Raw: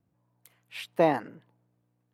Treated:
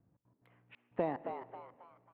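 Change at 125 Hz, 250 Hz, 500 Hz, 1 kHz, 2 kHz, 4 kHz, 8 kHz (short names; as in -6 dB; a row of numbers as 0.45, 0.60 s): -10.0 dB, -10.5 dB, -10.5 dB, -10.5 dB, -14.5 dB, under -20 dB, n/a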